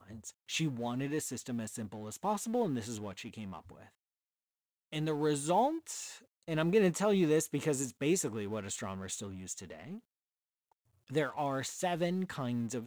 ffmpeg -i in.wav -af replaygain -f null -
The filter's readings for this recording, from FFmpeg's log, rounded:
track_gain = +13.6 dB
track_peak = 0.110